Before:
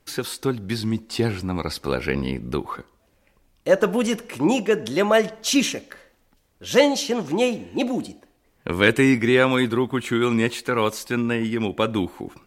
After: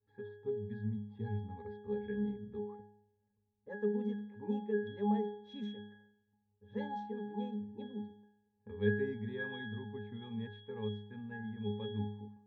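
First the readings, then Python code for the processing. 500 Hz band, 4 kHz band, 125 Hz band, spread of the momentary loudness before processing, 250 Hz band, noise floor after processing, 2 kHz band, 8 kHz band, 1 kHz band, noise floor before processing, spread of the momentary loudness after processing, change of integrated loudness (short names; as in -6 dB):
-17.5 dB, -25.5 dB, -12.5 dB, 12 LU, -16.0 dB, -79 dBFS, -21.5 dB, under -40 dB, -18.0 dB, -64 dBFS, 11 LU, -17.5 dB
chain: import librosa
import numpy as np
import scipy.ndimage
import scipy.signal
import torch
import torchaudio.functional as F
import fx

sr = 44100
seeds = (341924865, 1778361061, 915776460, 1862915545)

y = fx.env_lowpass(x, sr, base_hz=1200.0, full_db=-13.0)
y = fx.octave_resonator(y, sr, note='G#', decay_s=0.72)
y = y * 10.0 ** (1.5 / 20.0)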